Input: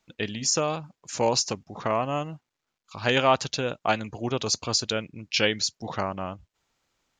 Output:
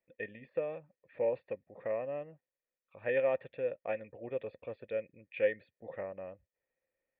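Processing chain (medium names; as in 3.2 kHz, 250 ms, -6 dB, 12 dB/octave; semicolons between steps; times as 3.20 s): cascade formant filter e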